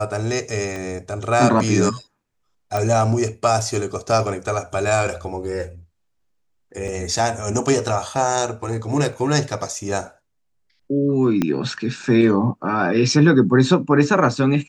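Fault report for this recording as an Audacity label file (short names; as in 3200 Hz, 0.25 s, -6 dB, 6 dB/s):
0.760000	0.760000	pop -17 dBFS
2.770000	2.770000	pop
6.880000	6.880000	gap 3.5 ms
9.130000	9.130000	gap 2 ms
11.420000	11.420000	pop -8 dBFS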